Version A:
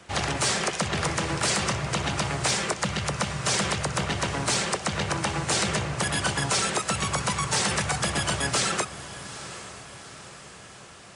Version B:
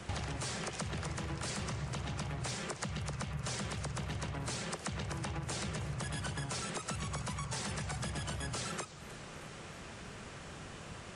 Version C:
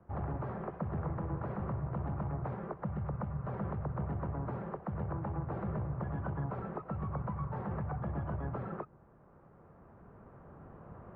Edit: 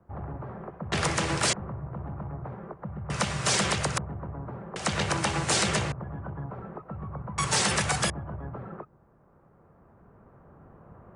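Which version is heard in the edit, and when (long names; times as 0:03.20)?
C
0:00.92–0:01.53: punch in from A
0:03.10–0:03.98: punch in from A
0:04.76–0:05.92: punch in from A
0:07.38–0:08.10: punch in from A
not used: B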